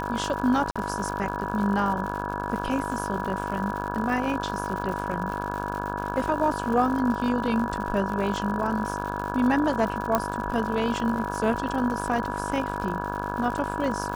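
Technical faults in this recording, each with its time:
buzz 50 Hz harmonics 34 -32 dBFS
crackle 140 per s -32 dBFS
whine 970 Hz -32 dBFS
0.71–0.76 s: dropout 46 ms
10.15 s: pop -8 dBFS

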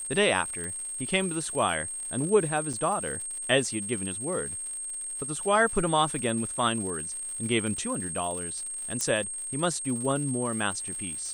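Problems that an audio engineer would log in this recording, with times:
crackle 190 per s -37 dBFS
whine 8.5 kHz -33 dBFS
0.64 s: pop
2.73–2.74 s: dropout 5.9 ms
9.01 s: pop -14 dBFS

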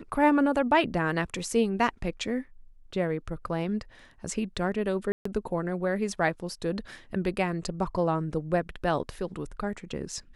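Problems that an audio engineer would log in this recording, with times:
5.12–5.25 s: dropout 134 ms

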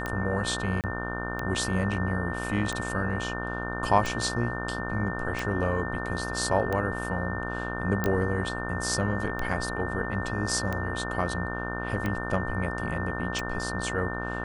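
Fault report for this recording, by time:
buzz 60 Hz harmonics 26 -34 dBFS
tick 45 rpm -17 dBFS
whine 1.8 kHz -35 dBFS
0.81–0.84 s: dropout 28 ms
8.04 s: pop -13 dBFS

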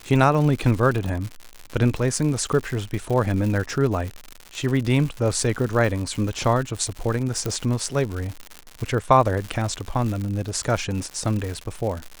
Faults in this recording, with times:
crackle 150 per s -27 dBFS
7.46 s: pop -11 dBFS

